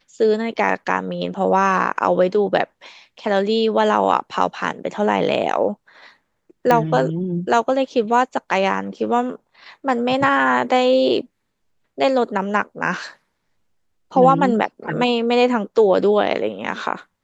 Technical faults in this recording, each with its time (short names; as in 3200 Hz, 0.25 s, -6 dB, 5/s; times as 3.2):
6.71 pop -5 dBFS